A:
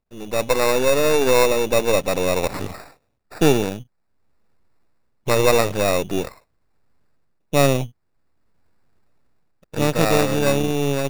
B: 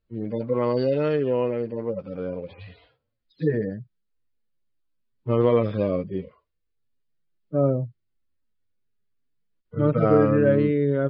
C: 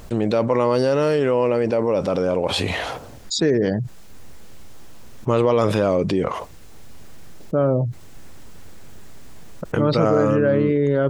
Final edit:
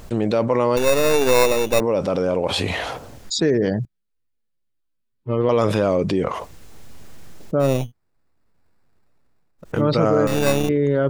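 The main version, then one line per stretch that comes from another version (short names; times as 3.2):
C
0.77–1.8 from A
3.85–5.49 from B
7.71–9.7 from A, crossfade 0.24 s
10.27–10.69 from A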